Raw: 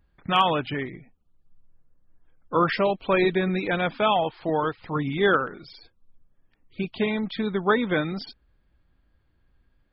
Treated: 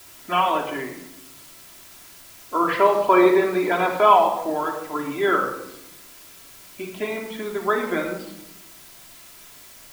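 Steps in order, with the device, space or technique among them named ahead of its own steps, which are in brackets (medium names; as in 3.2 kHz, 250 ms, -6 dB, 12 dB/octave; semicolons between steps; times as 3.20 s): wax cylinder (band-pass 330–2600 Hz; wow and flutter; white noise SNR 18 dB); 2.68–4.27 s: fifteen-band graphic EQ 100 Hz +5 dB, 400 Hz +5 dB, 1 kHz +11 dB, 4 kHz +4 dB; simulated room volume 2900 m³, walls furnished, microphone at 3 m; trim -1 dB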